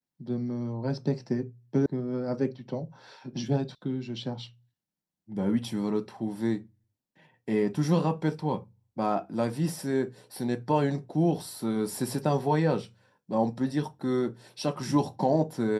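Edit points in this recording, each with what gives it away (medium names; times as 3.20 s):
1.86 s: sound stops dead
3.75 s: sound stops dead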